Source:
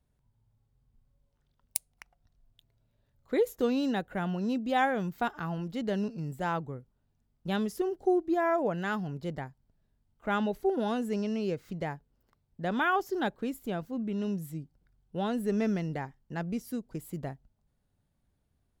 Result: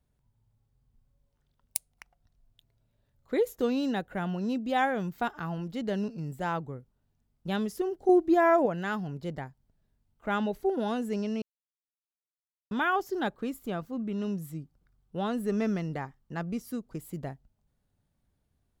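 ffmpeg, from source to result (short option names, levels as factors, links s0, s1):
-filter_complex "[0:a]asettb=1/sr,asplit=3[s0][s1][s2];[s0]atrim=end=8.094[s3];[s1]atrim=start=8.09:end=8.66,asetpts=PTS-STARTPTS,afade=t=in:d=0.004:c=qsin,afade=t=out:st=0.566:d=0.004:c=qsin,acontrast=33[s4];[s2]atrim=start=8.656[s5];[s3][s4]acrossfade=d=0.004:c1=hsin:c2=qsin[s6];[s6][s5]acrossfade=d=0.004:c1=qsin:c2=hsin,asettb=1/sr,asplit=3[s7][s8][s9];[s7]atrim=end=13.264[s10];[s8]atrim=start=13.26:end=16.99,asetpts=PTS-STARTPTS,afade=t=in:d=0.004:c=qsin,afade=t=out:st=3.726:d=0.004:c=qsin,equalizer=f=1200:t=o:w=0.24:g=7.5[s11];[s9]atrim=start=16.986[s12];[s10][s11]acrossfade=d=0.004:c1=hsin:c2=qsin[s13];[s13][s12]acrossfade=d=0.004:c1=qsin:c2=hsin,asplit=3[s14][s15][s16];[s14]atrim=end=11.42,asetpts=PTS-STARTPTS,afade=t=out:st=11.416:d=0.004:c=hsin[s17];[s15]atrim=start=11.42:end=12.71,asetpts=PTS-STARTPTS,volume=0[s18];[s16]atrim=start=12.71,asetpts=PTS-STARTPTS,afade=t=in:d=0.004:c=hsin[s19];[s17][s18][s19]concat=n=3:v=0:a=1"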